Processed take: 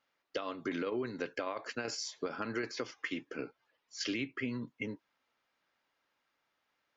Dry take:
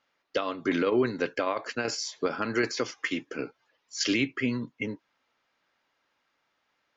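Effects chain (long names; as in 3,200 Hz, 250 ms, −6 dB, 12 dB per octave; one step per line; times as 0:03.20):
0:02.43–0:04.67: Bessel low-pass filter 5,100 Hz
downward compressor 4 to 1, threshold −27 dBFS, peak gain reduction 7 dB
level −5.5 dB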